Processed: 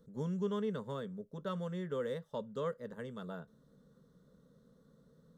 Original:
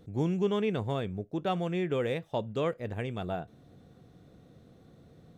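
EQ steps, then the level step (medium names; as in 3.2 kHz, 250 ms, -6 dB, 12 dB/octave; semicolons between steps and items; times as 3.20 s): dynamic bell 2.6 kHz, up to +4 dB, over -49 dBFS, Q 1; static phaser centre 490 Hz, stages 8; -5.5 dB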